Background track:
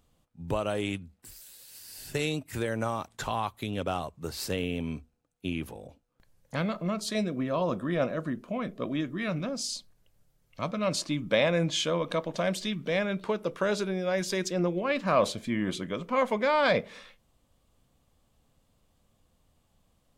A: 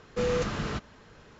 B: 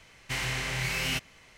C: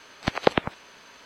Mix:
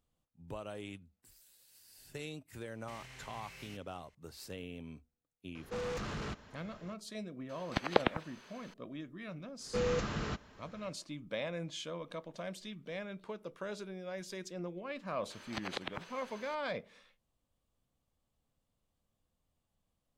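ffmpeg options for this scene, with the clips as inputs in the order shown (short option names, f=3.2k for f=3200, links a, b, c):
-filter_complex "[1:a]asplit=2[a][b];[3:a]asplit=2[c][d];[0:a]volume=-14dB[e];[2:a]alimiter=level_in=1.5dB:limit=-24dB:level=0:latency=1:release=127,volume=-1.5dB[f];[a]asoftclip=type=tanh:threshold=-32dB[g];[d]acompressor=threshold=-31dB:ratio=6:attack=3.2:release=140:knee=1:detection=peak[h];[f]atrim=end=1.57,asetpts=PTS-STARTPTS,volume=-17.5dB,afade=t=in:d=0.004:c=hsin,afade=t=out:st=1.566:d=0.004:c=hsin,adelay=2580[i];[g]atrim=end=1.39,asetpts=PTS-STARTPTS,volume=-3.5dB,afade=t=in:d=0.004:c=hsin,afade=t=out:st=1.386:d=0.004:c=hsin,adelay=5550[j];[c]atrim=end=1.25,asetpts=PTS-STARTPTS,volume=-8dB,afade=t=in:d=0.004:c=hsin,afade=t=out:st=1.246:d=0.004:c=hsin,adelay=7490[k];[b]atrim=end=1.39,asetpts=PTS-STARTPTS,volume=-5dB,afade=t=in:d=0.1,afade=t=out:st=1.29:d=0.1,adelay=9570[l];[h]atrim=end=1.25,asetpts=PTS-STARTPTS,volume=-5dB,afade=t=in:d=0.004:c=hsin,afade=t=out:st=1.246:d=0.004:c=hsin,adelay=15300[m];[e][i][j][k][l][m]amix=inputs=6:normalize=0"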